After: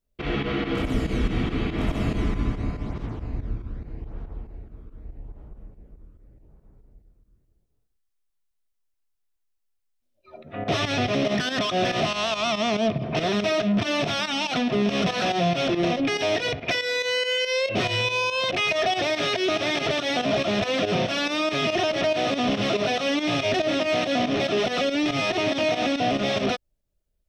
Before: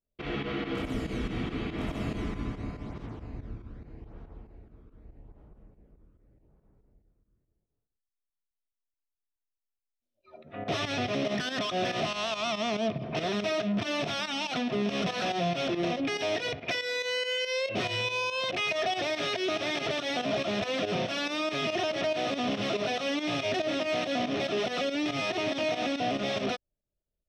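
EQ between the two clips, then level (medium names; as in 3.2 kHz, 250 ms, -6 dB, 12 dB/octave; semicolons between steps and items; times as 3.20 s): bass shelf 70 Hz +8.5 dB; +6.0 dB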